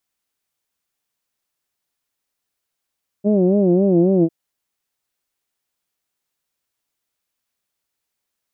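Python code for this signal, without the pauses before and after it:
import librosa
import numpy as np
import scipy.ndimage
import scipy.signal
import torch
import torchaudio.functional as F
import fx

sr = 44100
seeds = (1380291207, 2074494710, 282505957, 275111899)

y = fx.formant_vowel(sr, seeds[0], length_s=1.05, hz=198.0, glide_st=-2.0, vibrato_hz=3.7, vibrato_st=1.35, f1_hz=310.0, f2_hz=620.0, f3_hz=2600.0)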